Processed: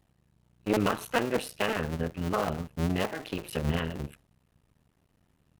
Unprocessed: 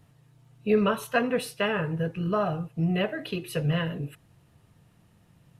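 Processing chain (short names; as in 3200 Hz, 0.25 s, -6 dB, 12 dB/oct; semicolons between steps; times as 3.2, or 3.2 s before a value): cycle switcher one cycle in 2, muted; gate -51 dBFS, range -6 dB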